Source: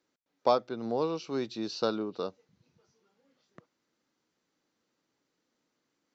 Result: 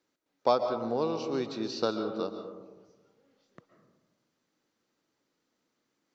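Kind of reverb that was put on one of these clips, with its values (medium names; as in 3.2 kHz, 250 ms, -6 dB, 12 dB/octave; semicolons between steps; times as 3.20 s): algorithmic reverb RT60 1.3 s, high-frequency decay 0.3×, pre-delay 95 ms, DRR 7 dB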